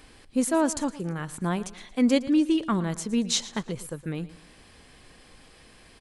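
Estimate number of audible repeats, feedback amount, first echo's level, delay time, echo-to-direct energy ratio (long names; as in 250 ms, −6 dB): 3, 36%, −17.0 dB, 114 ms, −16.5 dB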